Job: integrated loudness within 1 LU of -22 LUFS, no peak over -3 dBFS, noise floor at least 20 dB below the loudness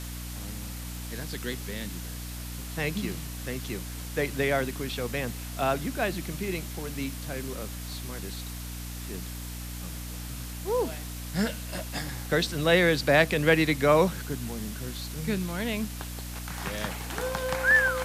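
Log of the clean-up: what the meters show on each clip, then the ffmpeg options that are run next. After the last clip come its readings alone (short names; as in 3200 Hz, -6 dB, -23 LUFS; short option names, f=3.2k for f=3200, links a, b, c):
hum 60 Hz; harmonics up to 300 Hz; hum level -36 dBFS; noise floor -38 dBFS; noise floor target -50 dBFS; loudness -29.5 LUFS; peak -8.5 dBFS; loudness target -22.0 LUFS
-> -af "bandreject=f=60:t=h:w=6,bandreject=f=120:t=h:w=6,bandreject=f=180:t=h:w=6,bandreject=f=240:t=h:w=6,bandreject=f=300:t=h:w=6"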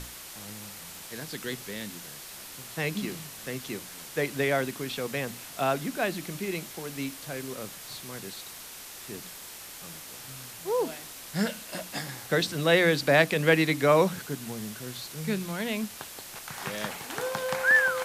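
hum none; noise floor -44 dBFS; noise floor target -49 dBFS
-> -af "afftdn=nr=6:nf=-44"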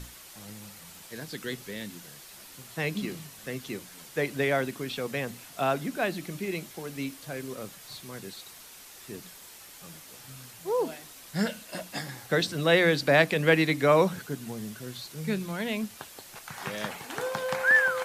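noise floor -49 dBFS; loudness -28.5 LUFS; peak -8.5 dBFS; loudness target -22.0 LUFS
-> -af "volume=6.5dB,alimiter=limit=-3dB:level=0:latency=1"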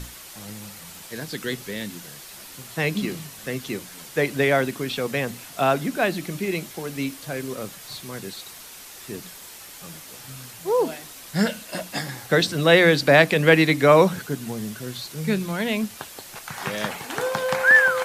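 loudness -22.0 LUFS; peak -3.0 dBFS; noise floor -42 dBFS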